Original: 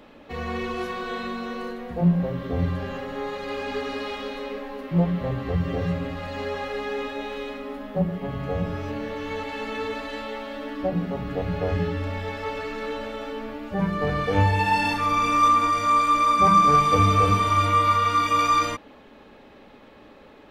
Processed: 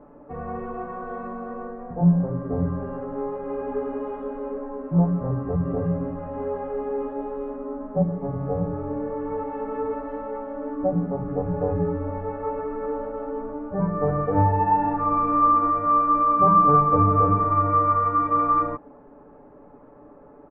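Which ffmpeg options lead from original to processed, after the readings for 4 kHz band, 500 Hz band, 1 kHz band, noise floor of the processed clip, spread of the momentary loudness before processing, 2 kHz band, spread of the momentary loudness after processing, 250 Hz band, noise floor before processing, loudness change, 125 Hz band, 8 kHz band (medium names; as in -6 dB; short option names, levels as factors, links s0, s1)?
under -35 dB, +2.0 dB, +0.5 dB, -48 dBFS, 15 LU, -13.5 dB, 14 LU, +2.0 dB, -49 dBFS, +0.5 dB, +0.5 dB, under -40 dB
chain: -af "lowpass=f=1200:w=0.5412,lowpass=f=1200:w=1.3066,aecho=1:1:6.9:0.51"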